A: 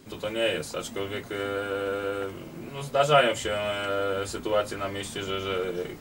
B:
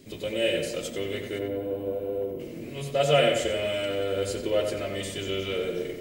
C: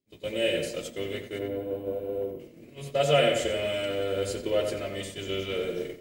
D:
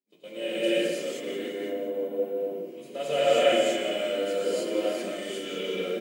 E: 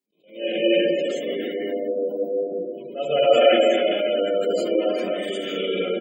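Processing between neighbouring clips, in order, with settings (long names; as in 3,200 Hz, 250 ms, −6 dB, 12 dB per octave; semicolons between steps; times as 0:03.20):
gain on a spectral selection 0:01.39–0:02.40, 1,100–11,000 Hz −17 dB; flat-topped bell 1,100 Hz −11 dB 1.2 octaves; tape delay 91 ms, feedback 58%, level −4.5 dB, low-pass 2,900 Hz
downward expander −29 dBFS; level −1 dB
Chebyshev high-pass filter 180 Hz, order 4; repeating echo 176 ms, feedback 55%, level −12.5 dB; convolution reverb, pre-delay 3 ms, DRR −9.5 dB; level −9 dB
far-end echo of a speakerphone 250 ms, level −8 dB; gate on every frequency bin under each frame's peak −25 dB strong; level that may rise only so fast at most 160 dB per second; level +6 dB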